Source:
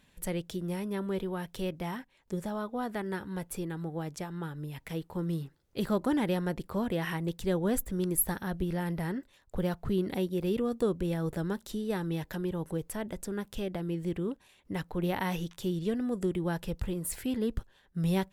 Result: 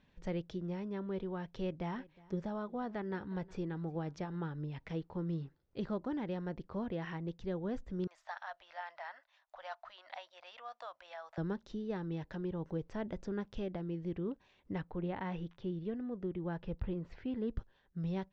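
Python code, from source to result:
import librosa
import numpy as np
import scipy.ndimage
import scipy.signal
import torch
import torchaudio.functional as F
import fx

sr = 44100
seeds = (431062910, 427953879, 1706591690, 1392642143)

y = fx.echo_single(x, sr, ms=362, db=-23.0, at=(1.49, 4.36))
y = fx.ellip_highpass(y, sr, hz=650.0, order=4, stop_db=40, at=(8.07, 11.38))
y = fx.lowpass(y, sr, hz=3300.0, slope=12, at=(14.78, 17.48))
y = scipy.signal.sosfilt(scipy.signal.butter(8, 6200.0, 'lowpass', fs=sr, output='sos'), y)
y = fx.high_shelf(y, sr, hz=2500.0, db=-9.0)
y = fx.rider(y, sr, range_db=4, speed_s=0.5)
y = F.gain(torch.from_numpy(y), -5.5).numpy()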